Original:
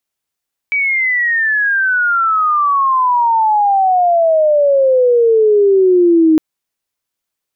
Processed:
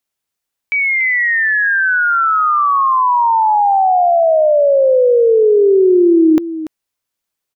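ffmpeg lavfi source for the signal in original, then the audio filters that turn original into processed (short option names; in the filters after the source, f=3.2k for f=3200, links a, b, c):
-f lavfi -i "aevalsrc='pow(10,(-12+6*t/5.66)/20)*sin(2*PI*2300*5.66/log(310/2300)*(exp(log(310/2300)*t/5.66)-1))':d=5.66:s=44100"
-af "aecho=1:1:288:0.224"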